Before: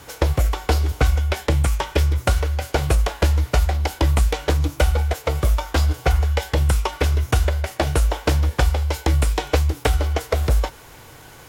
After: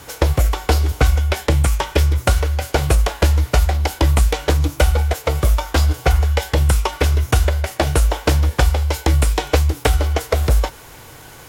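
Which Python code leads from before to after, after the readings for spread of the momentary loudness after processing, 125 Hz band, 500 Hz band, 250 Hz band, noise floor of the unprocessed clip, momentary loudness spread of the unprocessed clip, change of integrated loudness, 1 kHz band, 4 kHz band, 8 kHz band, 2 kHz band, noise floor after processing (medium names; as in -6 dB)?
3 LU, +3.0 dB, +3.0 dB, +3.0 dB, -44 dBFS, 3 LU, +3.0 dB, +3.0 dB, +3.5 dB, +5.0 dB, +3.0 dB, -40 dBFS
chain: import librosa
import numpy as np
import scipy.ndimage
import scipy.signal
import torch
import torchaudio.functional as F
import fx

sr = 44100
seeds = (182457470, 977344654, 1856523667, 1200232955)

y = fx.peak_eq(x, sr, hz=12000.0, db=2.5, octaves=1.6)
y = y * librosa.db_to_amplitude(3.0)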